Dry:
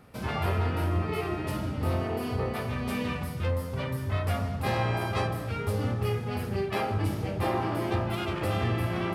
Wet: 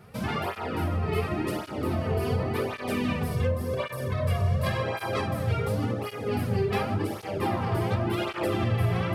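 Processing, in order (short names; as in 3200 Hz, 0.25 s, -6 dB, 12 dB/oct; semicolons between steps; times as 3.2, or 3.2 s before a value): 3.31–4.83 comb 1.8 ms, depth 90%; compressor, threshold -27 dBFS, peak gain reduction 8 dB; analogue delay 0.196 s, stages 1024, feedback 82%, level -9 dB; tape flanging out of phase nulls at 0.9 Hz, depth 3.9 ms; gain +6 dB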